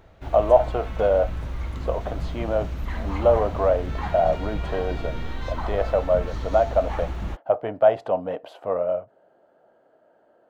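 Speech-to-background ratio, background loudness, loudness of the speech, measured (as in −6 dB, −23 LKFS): 8.0 dB, −32.0 LKFS, −24.0 LKFS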